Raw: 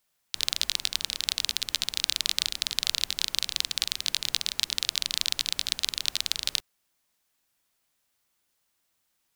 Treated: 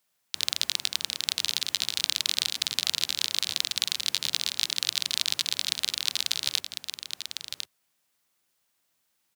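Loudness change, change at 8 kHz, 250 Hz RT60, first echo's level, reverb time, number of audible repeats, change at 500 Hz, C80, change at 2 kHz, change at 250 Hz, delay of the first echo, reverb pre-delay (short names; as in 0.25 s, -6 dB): 0.0 dB, +0.5 dB, none, -7.5 dB, none, 1, +0.5 dB, none, +0.5 dB, +0.5 dB, 1.051 s, none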